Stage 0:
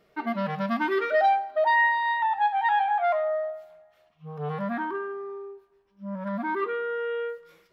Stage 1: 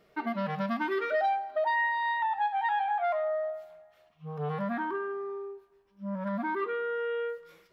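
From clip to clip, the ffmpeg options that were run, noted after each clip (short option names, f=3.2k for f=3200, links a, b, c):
-af "acompressor=threshold=-30dB:ratio=2"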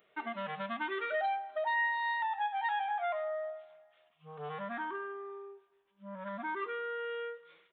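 -af "aresample=8000,aresample=44100,aemphasis=mode=production:type=riaa,volume=-4.5dB"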